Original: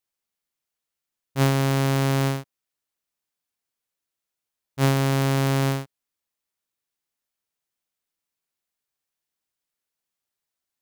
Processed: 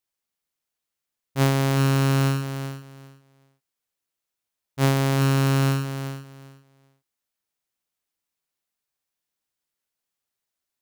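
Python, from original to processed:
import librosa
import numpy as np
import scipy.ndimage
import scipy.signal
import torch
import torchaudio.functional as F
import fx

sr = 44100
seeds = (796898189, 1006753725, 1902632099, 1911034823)

y = fx.echo_feedback(x, sr, ms=389, feedback_pct=19, wet_db=-9.5)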